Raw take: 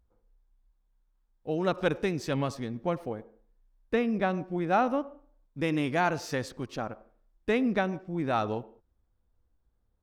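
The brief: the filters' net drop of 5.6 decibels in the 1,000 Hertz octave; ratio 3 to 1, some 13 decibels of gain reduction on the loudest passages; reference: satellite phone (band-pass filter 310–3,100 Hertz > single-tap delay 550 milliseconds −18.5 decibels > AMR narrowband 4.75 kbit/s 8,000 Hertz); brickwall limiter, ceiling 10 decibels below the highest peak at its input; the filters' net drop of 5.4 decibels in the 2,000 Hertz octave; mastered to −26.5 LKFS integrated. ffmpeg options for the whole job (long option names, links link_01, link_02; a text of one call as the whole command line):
ffmpeg -i in.wav -af "equalizer=frequency=1000:width_type=o:gain=-7.5,equalizer=frequency=2000:width_type=o:gain=-3.5,acompressor=threshold=-42dB:ratio=3,alimiter=level_in=13dB:limit=-24dB:level=0:latency=1,volume=-13dB,highpass=310,lowpass=3100,aecho=1:1:550:0.119,volume=25.5dB" -ar 8000 -c:a libopencore_amrnb -b:a 4750 out.amr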